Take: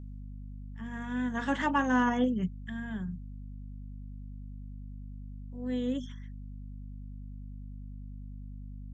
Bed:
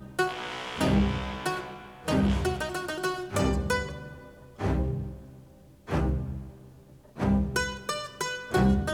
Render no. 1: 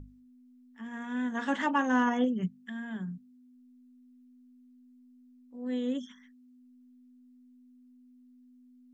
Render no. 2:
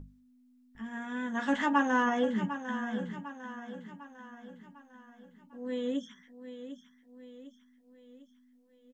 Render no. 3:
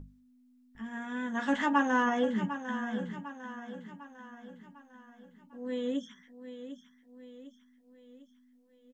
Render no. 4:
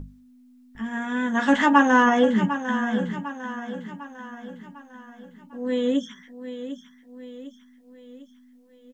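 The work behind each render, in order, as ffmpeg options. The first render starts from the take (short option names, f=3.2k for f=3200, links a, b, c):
-af "bandreject=f=50:t=h:w=6,bandreject=f=100:t=h:w=6,bandreject=f=150:t=h:w=6,bandreject=f=200:t=h:w=6"
-filter_complex "[0:a]asplit=2[a][b];[b]adelay=14,volume=-7dB[c];[a][c]amix=inputs=2:normalize=0,aecho=1:1:751|1502|2253|3004|3755:0.282|0.138|0.0677|0.0332|0.0162"
-af anull
-af "volume=10dB"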